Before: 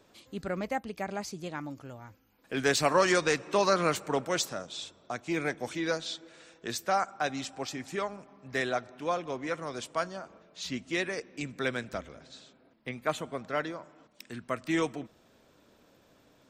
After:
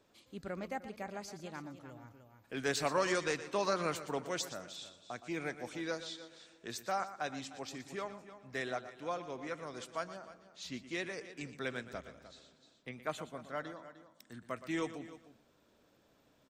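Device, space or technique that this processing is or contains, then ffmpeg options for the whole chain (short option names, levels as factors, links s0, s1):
ducked delay: -filter_complex "[0:a]asettb=1/sr,asplit=3[s0][s1][s2];[s0]atrim=end=13.294[s3];[s1]atrim=start=13.29:end=14.42,asetpts=PTS-STARTPTS,afade=t=in:d=0.004:c=qsin,afade=t=out:st=1.126:d=0.004:c=qsin,equalizer=f=400:t=o:w=0.33:g=-7,equalizer=f=2500:t=o:w=0.33:g=-12,equalizer=f=5000:t=o:w=0.33:g=-4[s4];[s2]atrim=start=14.416[s5];[s3][s4]acrossfade=d=0.004:c1=hsin:c2=qsin[s6];[s6][s5]acrossfade=d=0.004:c1=qsin:c2=hsin,asplit=3[s7][s8][s9];[s8]adelay=304,volume=0.501[s10];[s9]apad=whole_len=740692[s11];[s10][s11]sidechaincompress=threshold=0.0158:ratio=8:attack=8.7:release=1290[s12];[s7][s12]amix=inputs=2:normalize=0,aecho=1:1:119:0.224,volume=0.398"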